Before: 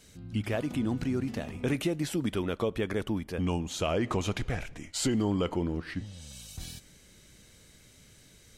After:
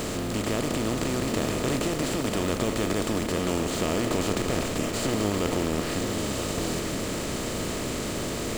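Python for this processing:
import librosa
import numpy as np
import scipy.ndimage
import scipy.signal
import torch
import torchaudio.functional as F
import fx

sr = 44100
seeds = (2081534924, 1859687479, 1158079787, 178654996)

p1 = fx.bin_compress(x, sr, power=0.2)
p2 = p1 + 10.0 ** (-7.5 / 20.0) * np.pad(p1, (int(975 * sr / 1000.0), 0))[:len(p1)]
p3 = (np.mod(10.0 ** (22.5 / 20.0) * p2 + 1.0, 2.0) - 1.0) / 10.0 ** (22.5 / 20.0)
p4 = p2 + (p3 * 10.0 ** (-10.5 / 20.0))
y = p4 * 10.0 ** (-5.5 / 20.0)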